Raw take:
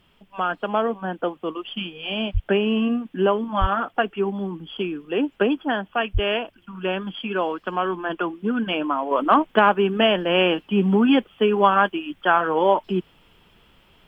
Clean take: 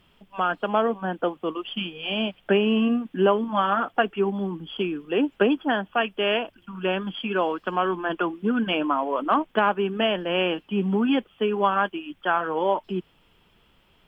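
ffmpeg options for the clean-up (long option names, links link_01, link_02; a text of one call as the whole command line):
ffmpeg -i in.wav -filter_complex "[0:a]asplit=3[link_01][link_02][link_03];[link_01]afade=type=out:start_time=2.33:duration=0.02[link_04];[link_02]highpass=frequency=140:width=0.5412,highpass=frequency=140:width=1.3066,afade=type=in:start_time=2.33:duration=0.02,afade=type=out:start_time=2.45:duration=0.02[link_05];[link_03]afade=type=in:start_time=2.45:duration=0.02[link_06];[link_04][link_05][link_06]amix=inputs=3:normalize=0,asplit=3[link_07][link_08][link_09];[link_07]afade=type=out:start_time=3.6:duration=0.02[link_10];[link_08]highpass=frequency=140:width=0.5412,highpass=frequency=140:width=1.3066,afade=type=in:start_time=3.6:duration=0.02,afade=type=out:start_time=3.72:duration=0.02[link_11];[link_09]afade=type=in:start_time=3.72:duration=0.02[link_12];[link_10][link_11][link_12]amix=inputs=3:normalize=0,asplit=3[link_13][link_14][link_15];[link_13]afade=type=out:start_time=6.13:duration=0.02[link_16];[link_14]highpass=frequency=140:width=0.5412,highpass=frequency=140:width=1.3066,afade=type=in:start_time=6.13:duration=0.02,afade=type=out:start_time=6.25:duration=0.02[link_17];[link_15]afade=type=in:start_time=6.25:duration=0.02[link_18];[link_16][link_17][link_18]amix=inputs=3:normalize=0,agate=range=-21dB:threshold=-48dB,asetnsamples=nb_out_samples=441:pad=0,asendcmd='9.11 volume volume -5dB',volume=0dB" out.wav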